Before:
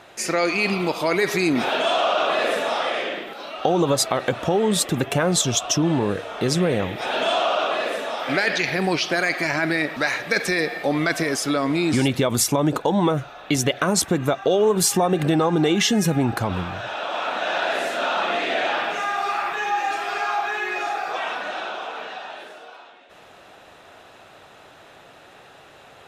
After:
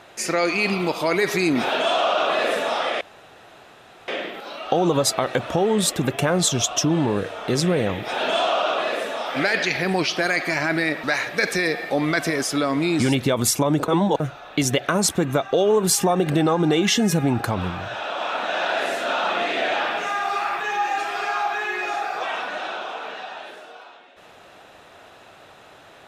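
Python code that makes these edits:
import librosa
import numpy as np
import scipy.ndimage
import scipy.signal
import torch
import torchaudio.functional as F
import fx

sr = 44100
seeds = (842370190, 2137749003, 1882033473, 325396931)

y = fx.edit(x, sr, fx.insert_room_tone(at_s=3.01, length_s=1.07),
    fx.reverse_span(start_s=12.81, length_s=0.32), tone=tone)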